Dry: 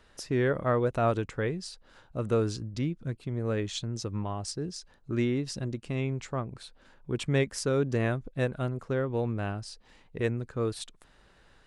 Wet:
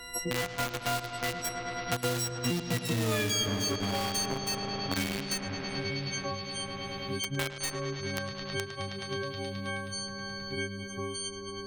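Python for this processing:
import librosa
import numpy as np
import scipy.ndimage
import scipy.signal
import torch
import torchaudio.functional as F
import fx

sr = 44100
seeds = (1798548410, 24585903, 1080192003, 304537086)

p1 = fx.freq_snap(x, sr, grid_st=6)
p2 = fx.doppler_pass(p1, sr, speed_mps=40, closest_m=11.0, pass_at_s=3.11)
p3 = fx.quant_companded(p2, sr, bits=2)
p4 = p2 + F.gain(torch.from_numpy(p3), -4.0).numpy()
p5 = fx.echo_bbd(p4, sr, ms=106, stages=4096, feedback_pct=83, wet_db=-12)
p6 = fx.band_squash(p5, sr, depth_pct=100)
y = F.gain(torch.from_numpy(p6), 2.5).numpy()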